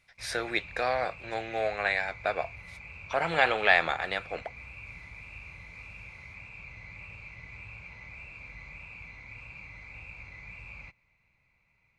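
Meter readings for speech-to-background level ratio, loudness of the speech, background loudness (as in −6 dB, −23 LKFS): 16.0 dB, −28.5 LKFS, −44.5 LKFS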